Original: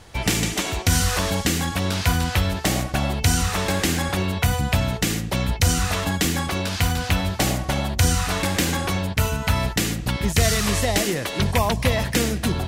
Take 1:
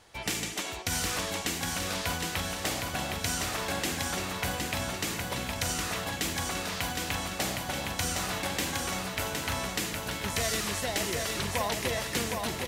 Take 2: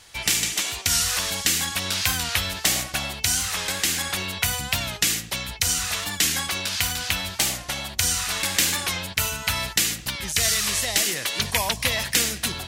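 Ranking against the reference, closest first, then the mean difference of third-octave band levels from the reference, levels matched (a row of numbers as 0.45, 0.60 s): 1, 2; 5.0, 6.5 dB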